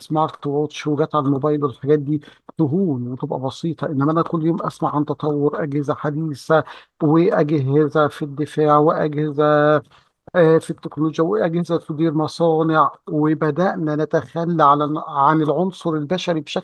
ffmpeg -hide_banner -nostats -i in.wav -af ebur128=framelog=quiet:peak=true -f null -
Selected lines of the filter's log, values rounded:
Integrated loudness:
  I:         -19.1 LUFS
  Threshold: -29.2 LUFS
Loudness range:
  LRA:         3.7 LU
  Threshold: -39.1 LUFS
  LRA low:   -21.2 LUFS
  LRA high:  -17.5 LUFS
True peak:
  Peak:       -1.5 dBFS